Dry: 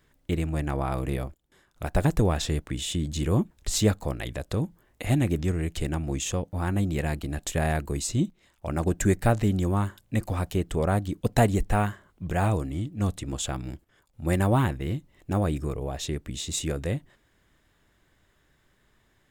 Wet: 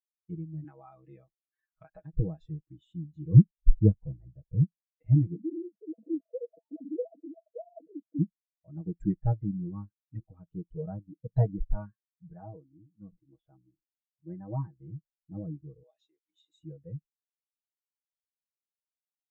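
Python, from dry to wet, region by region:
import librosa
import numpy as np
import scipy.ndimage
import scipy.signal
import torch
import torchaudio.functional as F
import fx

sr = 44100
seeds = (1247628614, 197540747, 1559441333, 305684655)

y = fx.chain(x, sr, fx.tilt_shelf(db=-7.5, hz=770.0),
    fx.band_squash(depth_pct=100), at=(0.64, 2.13))
y = fx.chain(y, sr, fx.lowpass(hz=1300.0, slope=12),
    fx.low_shelf(hz=150.0, db=8.0), at=(3.34, 4.64))
y = fx.chain(y, sr, fx.sine_speech(),
    fx.cheby_ripple(hz=690.0, ripple_db=6),
    fx.env_flatten(amount_pct=50), at=(5.35, 8.19))
y = fx.chain(y, sr, fx.lowpass(hz=2200.0, slope=12),
    fx.low_shelf(hz=220.0, db=-6.5),
    fx.sustainer(db_per_s=140.0), at=(12.33, 14.8))
y = fx.chain(y, sr, fx.highpass(hz=560.0, slope=12),
    fx.band_squash(depth_pct=70), at=(15.83, 16.59))
y = scipy.signal.sosfilt(scipy.signal.bessel(2, 6800.0, 'lowpass', norm='mag', fs=sr, output='sos'), y)
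y = y + 0.7 * np.pad(y, (int(6.3 * sr / 1000.0), 0))[:len(y)]
y = fx.spectral_expand(y, sr, expansion=2.5)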